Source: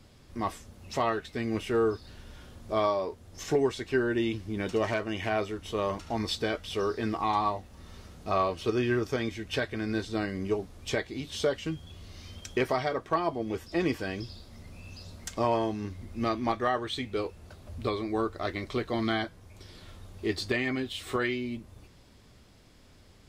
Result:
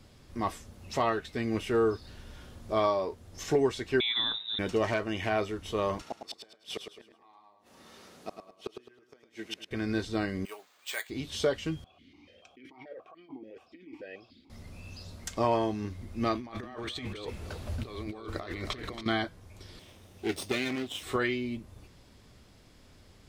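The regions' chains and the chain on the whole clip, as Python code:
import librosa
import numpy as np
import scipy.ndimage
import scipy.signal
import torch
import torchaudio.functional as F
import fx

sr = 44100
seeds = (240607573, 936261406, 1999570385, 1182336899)

y = fx.chain(x, sr, fx.peak_eq(hz=490.0, db=-4.0, octaves=1.6),
    fx.freq_invert(carrier_hz=3800), at=(4.0, 4.59))
y = fx.chain(y, sr, fx.highpass(hz=270.0, slope=12),
    fx.gate_flip(shuts_db=-24.0, range_db=-32),
    fx.echo_feedback(ms=106, feedback_pct=34, wet_db=-7.0), at=(6.02, 9.71))
y = fx.chain(y, sr, fx.highpass(hz=1200.0, slope=12),
    fx.high_shelf(hz=10000.0, db=2.5),
    fx.resample_bad(factor=4, down='filtered', up='hold'), at=(10.45, 11.1))
y = fx.chain(y, sr, fx.over_compress(threshold_db=-36.0, ratio=-1.0),
    fx.vowel_held(hz=6.9), at=(11.84, 14.5))
y = fx.chain(y, sr, fx.peak_eq(hz=2700.0, db=2.5, octaves=2.2),
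    fx.over_compress(threshold_db=-40.0, ratio=-1.0),
    fx.echo_single(ms=277, db=-9.0), at=(16.35, 19.06))
y = fx.chain(y, sr, fx.lower_of_two(delay_ms=0.34),
    fx.highpass(hz=200.0, slope=6), at=(19.79, 21.03))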